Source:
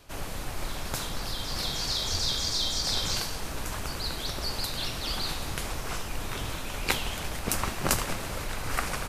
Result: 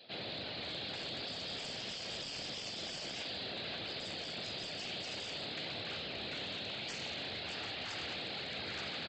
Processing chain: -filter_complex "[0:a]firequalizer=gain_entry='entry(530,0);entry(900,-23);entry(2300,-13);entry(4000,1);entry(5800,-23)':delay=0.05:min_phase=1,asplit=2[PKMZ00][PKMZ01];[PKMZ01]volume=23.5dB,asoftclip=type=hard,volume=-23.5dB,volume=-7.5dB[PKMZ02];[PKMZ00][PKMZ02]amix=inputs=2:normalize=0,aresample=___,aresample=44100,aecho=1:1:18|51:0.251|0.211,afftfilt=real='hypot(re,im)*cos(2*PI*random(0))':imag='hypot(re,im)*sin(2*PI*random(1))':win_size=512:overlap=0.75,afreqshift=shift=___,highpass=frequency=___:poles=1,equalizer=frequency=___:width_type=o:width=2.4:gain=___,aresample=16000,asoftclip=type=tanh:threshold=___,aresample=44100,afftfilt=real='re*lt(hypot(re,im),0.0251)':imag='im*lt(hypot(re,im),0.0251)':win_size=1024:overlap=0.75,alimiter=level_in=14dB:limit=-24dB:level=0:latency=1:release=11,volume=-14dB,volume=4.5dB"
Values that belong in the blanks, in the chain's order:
11025, 67, 850, 1.9k, 11.5, -33dB